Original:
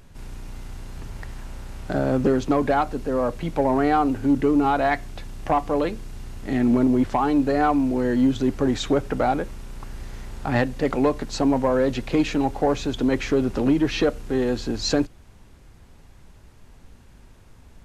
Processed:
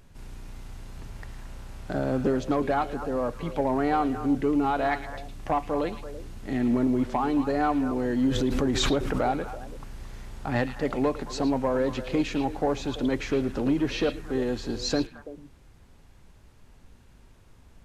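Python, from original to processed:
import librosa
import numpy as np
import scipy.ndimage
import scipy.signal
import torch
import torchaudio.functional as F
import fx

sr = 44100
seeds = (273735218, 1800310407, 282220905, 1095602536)

y = fx.echo_stepped(x, sr, ms=111, hz=3200.0, octaves=-1.4, feedback_pct=70, wet_db=-6)
y = fx.pre_swell(y, sr, db_per_s=25.0, at=(8.31, 9.71))
y = y * 10.0 ** (-5.0 / 20.0)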